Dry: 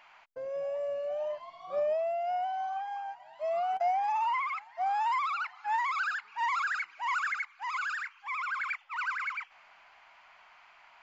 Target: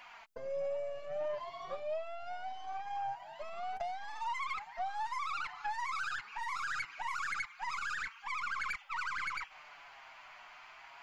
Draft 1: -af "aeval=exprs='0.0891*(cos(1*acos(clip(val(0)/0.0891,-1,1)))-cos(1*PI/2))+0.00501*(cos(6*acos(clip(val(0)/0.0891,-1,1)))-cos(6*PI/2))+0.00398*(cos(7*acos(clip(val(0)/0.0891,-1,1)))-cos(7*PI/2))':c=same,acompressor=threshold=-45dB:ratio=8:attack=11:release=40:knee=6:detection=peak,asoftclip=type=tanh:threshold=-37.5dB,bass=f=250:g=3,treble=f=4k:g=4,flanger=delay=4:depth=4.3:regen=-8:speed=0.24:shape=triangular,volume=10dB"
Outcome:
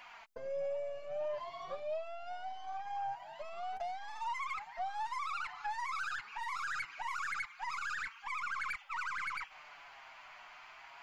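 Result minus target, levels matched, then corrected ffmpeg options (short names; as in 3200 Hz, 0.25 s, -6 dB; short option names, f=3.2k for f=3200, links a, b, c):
soft clip: distortion +15 dB
-af "aeval=exprs='0.0891*(cos(1*acos(clip(val(0)/0.0891,-1,1)))-cos(1*PI/2))+0.00501*(cos(6*acos(clip(val(0)/0.0891,-1,1)))-cos(6*PI/2))+0.00398*(cos(7*acos(clip(val(0)/0.0891,-1,1)))-cos(7*PI/2))':c=same,acompressor=threshold=-45dB:ratio=8:attack=11:release=40:knee=6:detection=peak,asoftclip=type=tanh:threshold=-29dB,bass=f=250:g=3,treble=f=4k:g=4,flanger=delay=4:depth=4.3:regen=-8:speed=0.24:shape=triangular,volume=10dB"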